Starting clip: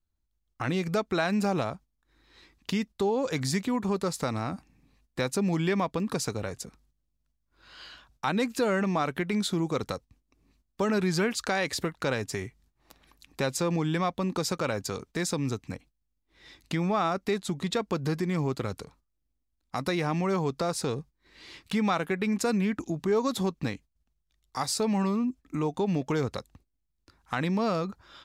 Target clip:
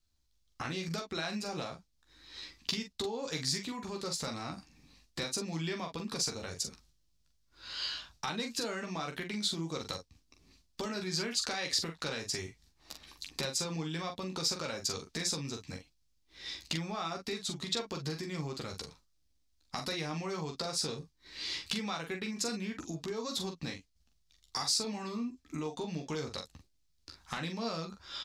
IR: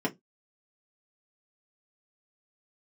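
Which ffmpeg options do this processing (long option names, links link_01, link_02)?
-filter_complex "[0:a]acompressor=threshold=-42dB:ratio=3,equalizer=frequency=4900:width_type=o:width=1.6:gain=13,asplit=2[link_01][link_02];[link_02]aecho=0:1:13|43|54:0.531|0.473|0.2[link_03];[link_01][link_03]amix=inputs=2:normalize=0,asoftclip=type=tanh:threshold=-12dB"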